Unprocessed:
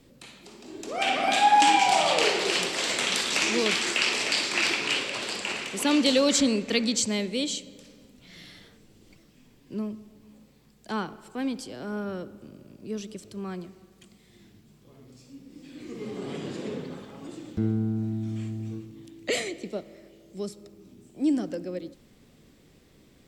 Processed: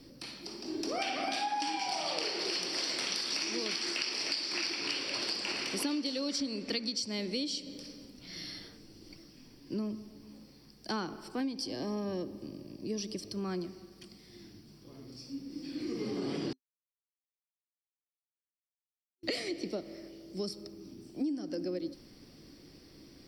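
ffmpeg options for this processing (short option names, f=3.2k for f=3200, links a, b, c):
-filter_complex "[0:a]asettb=1/sr,asplit=3[a][b][c];[a]atrim=end=11.404[d];[b]atrim=start=11.4:end=13.33,asetpts=PTS-STARTPTS,afade=t=in:d=0.004:c=qsin,afade=t=out:st=1.926:d=0.004:c=qsin,asuperstop=centerf=1400:order=20:qfactor=4.8[e];[c]atrim=start=13.326[f];[d][e]acrossfade=d=0.004:c1=hsin:c2=qsin[g];[g][f]acrossfade=d=0.004:c1=qsin:c2=hsin,asplit=3[h][i][j];[h]atrim=end=16.53,asetpts=PTS-STARTPTS,afade=t=out:st=16.526:d=0.004:c=hsin[k];[i]atrim=start=16.53:end=19.23,asetpts=PTS-STARTPTS,volume=0[l];[j]atrim=start=19.23,asetpts=PTS-STARTPTS,afade=t=in:d=0.004:c=hsin[m];[k][l][m]concat=n=3:v=0:a=1,superequalizer=6b=2:14b=3.55:15b=0.398,acompressor=threshold=-31dB:ratio=12"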